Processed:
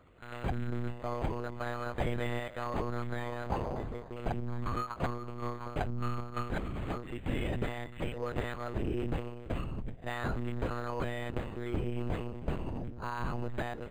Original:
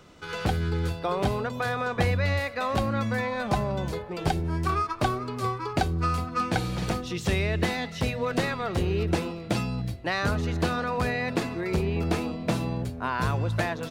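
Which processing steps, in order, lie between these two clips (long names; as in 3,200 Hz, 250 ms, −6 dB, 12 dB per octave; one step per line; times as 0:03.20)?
echo ahead of the sound 49 ms −19.5 dB
one-pitch LPC vocoder at 8 kHz 120 Hz
linearly interpolated sample-rate reduction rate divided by 8×
level −7.5 dB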